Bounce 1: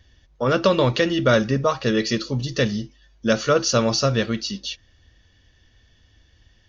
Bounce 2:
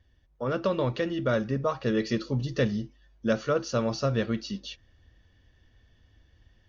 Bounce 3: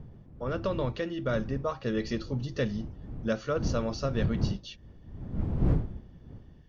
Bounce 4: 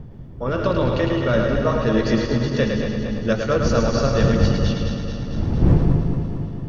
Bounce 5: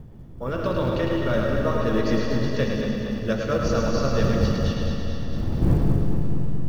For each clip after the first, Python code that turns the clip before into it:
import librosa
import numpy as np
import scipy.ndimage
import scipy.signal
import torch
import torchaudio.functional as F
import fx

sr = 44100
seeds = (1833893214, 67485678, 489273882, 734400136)

y1 = fx.high_shelf(x, sr, hz=2800.0, db=-11.5)
y1 = fx.rider(y1, sr, range_db=3, speed_s=0.5)
y1 = F.gain(torch.from_numpy(y1), -6.0).numpy()
y2 = fx.dmg_wind(y1, sr, seeds[0], corner_hz=140.0, level_db=-30.0)
y2 = F.gain(torch.from_numpy(y2), -4.0).numpy()
y3 = fx.reverse_delay_fb(y2, sr, ms=114, feedback_pct=80, wet_db=-7.0)
y3 = fx.echo_split(y3, sr, split_hz=320.0, low_ms=189, high_ms=107, feedback_pct=52, wet_db=-5)
y3 = F.gain(torch.from_numpy(y3), 8.5).numpy()
y4 = fx.quant_companded(y3, sr, bits=8)
y4 = fx.rev_freeverb(y4, sr, rt60_s=3.0, hf_ratio=0.85, predelay_ms=30, drr_db=4.5)
y4 = F.gain(torch.from_numpy(y4), -5.0).numpy()